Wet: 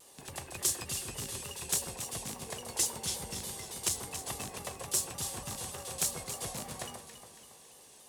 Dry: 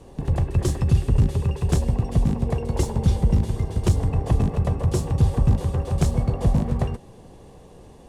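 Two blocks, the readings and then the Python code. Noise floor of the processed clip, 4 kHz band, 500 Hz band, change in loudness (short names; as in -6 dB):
-56 dBFS, +3.0 dB, -15.0 dB, -12.0 dB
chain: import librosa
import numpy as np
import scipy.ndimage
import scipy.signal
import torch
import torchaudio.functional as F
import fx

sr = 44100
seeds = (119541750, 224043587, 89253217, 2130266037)

y = np.diff(x, prepend=0.0)
y = fx.echo_alternate(y, sr, ms=139, hz=1500.0, feedback_pct=68, wet_db=-6.5)
y = fx.vibrato_shape(y, sr, shape='saw_down', rate_hz=3.5, depth_cents=100.0)
y = y * librosa.db_to_amplitude(7.5)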